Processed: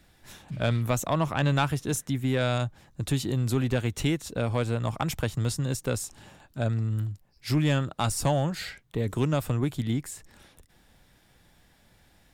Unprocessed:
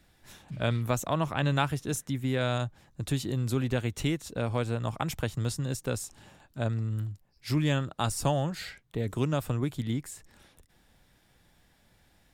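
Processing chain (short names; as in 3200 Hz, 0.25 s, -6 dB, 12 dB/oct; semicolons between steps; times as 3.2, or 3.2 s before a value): soft clip -17 dBFS, distortion -21 dB; gain +3.5 dB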